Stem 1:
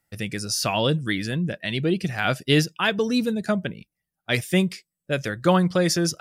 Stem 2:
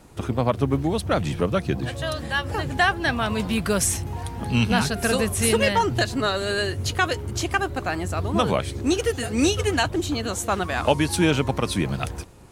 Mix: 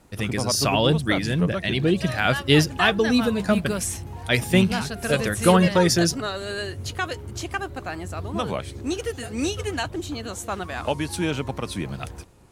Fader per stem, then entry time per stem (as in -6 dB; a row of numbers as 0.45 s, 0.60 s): +2.0 dB, -5.5 dB; 0.00 s, 0.00 s